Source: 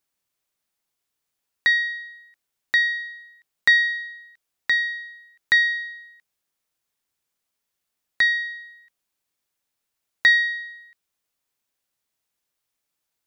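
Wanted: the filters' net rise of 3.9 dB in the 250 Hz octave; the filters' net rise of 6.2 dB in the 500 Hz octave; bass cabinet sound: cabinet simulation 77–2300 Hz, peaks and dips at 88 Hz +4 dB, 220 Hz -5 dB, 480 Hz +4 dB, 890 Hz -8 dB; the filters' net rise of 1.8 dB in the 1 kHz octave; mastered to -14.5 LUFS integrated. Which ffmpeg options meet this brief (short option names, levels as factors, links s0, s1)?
-af "highpass=f=77:w=0.5412,highpass=f=77:w=1.3066,equalizer=f=88:t=q:w=4:g=4,equalizer=f=220:t=q:w=4:g=-5,equalizer=f=480:t=q:w=4:g=4,equalizer=f=890:t=q:w=4:g=-8,lowpass=f=2300:w=0.5412,lowpass=f=2300:w=1.3066,equalizer=f=250:t=o:g=5.5,equalizer=f=500:t=o:g=3.5,equalizer=f=1000:t=o:g=4.5,volume=2"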